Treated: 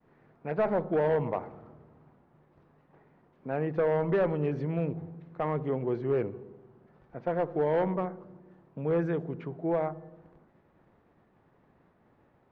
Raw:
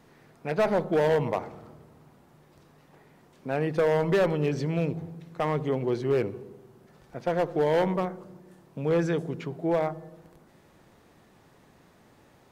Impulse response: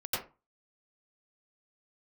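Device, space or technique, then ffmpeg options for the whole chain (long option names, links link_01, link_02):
hearing-loss simulation: -af "lowpass=1800,agate=range=-33dB:threshold=-54dB:ratio=3:detection=peak,volume=-3dB"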